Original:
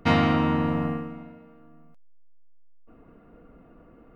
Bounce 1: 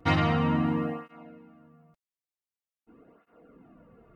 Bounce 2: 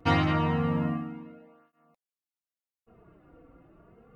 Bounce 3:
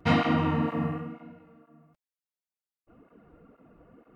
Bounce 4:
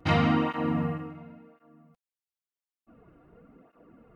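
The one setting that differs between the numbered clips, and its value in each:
cancelling through-zero flanger, nulls at: 0.46 Hz, 0.29 Hz, 2.1 Hz, 0.94 Hz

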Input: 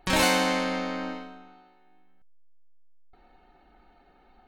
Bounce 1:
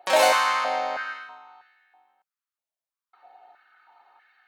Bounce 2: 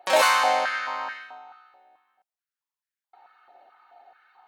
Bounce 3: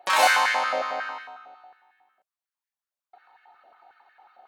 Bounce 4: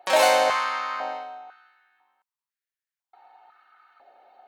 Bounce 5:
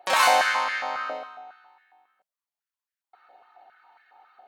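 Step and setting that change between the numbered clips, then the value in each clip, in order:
step-sequenced high-pass, rate: 3.1 Hz, 4.6 Hz, 11 Hz, 2 Hz, 7.3 Hz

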